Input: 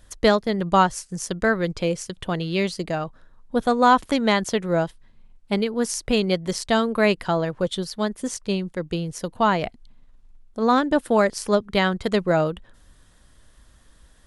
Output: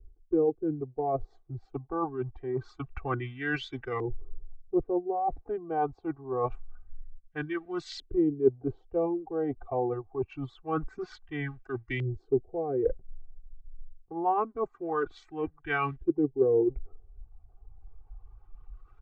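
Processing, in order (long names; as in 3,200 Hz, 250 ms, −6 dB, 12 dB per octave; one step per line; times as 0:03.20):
mu-law and A-law mismatch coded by mu
reverb reduction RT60 0.88 s
speech leveller 0.5 s
speed change −25%
comb filter 2.6 ms, depth 99%
reversed playback
downward compressor 6 to 1, threshold −31 dBFS, peak gain reduction 19 dB
reversed playback
auto-filter low-pass saw up 0.25 Hz 360–2,000 Hz
multiband upward and downward expander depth 70%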